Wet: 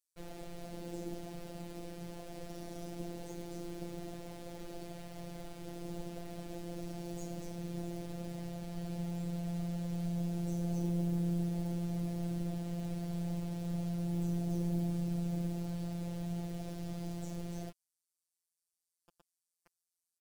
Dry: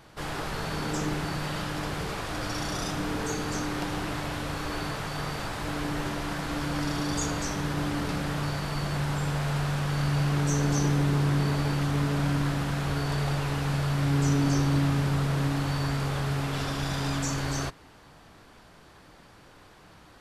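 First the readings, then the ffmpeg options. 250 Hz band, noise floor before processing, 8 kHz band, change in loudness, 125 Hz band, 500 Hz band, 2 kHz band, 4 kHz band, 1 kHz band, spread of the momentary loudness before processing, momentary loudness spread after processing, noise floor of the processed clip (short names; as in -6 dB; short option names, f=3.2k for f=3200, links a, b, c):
-7.5 dB, -53 dBFS, -17.0 dB, -11.0 dB, -11.5 dB, -10.5 dB, -24.0 dB, -19.5 dB, -18.5 dB, 8 LU, 12 LU, under -85 dBFS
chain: -filter_complex "[0:a]bandreject=f=50:t=h:w=6,bandreject=f=100:t=h:w=6,bandreject=f=150:t=h:w=6,bandreject=f=200:t=h:w=6,aeval=exprs='0.211*(cos(1*acos(clip(val(0)/0.211,-1,1)))-cos(1*PI/2))+0.0133*(cos(4*acos(clip(val(0)/0.211,-1,1)))-cos(4*PI/2))':c=same,firequalizer=gain_entry='entry(110,0);entry(690,-1);entry(1100,-24);entry(8500,-8)':delay=0.05:min_phase=1,flanger=delay=6.4:depth=3.1:regen=-47:speed=0.53:shape=sinusoidal,acrossover=split=5100[a][b];[a]acrusher=bits=7:mix=0:aa=0.000001[c];[c][b]amix=inputs=2:normalize=0,afftfilt=real='hypot(re,im)*cos(PI*b)':imag='0':win_size=1024:overlap=0.75,volume=-2.5dB"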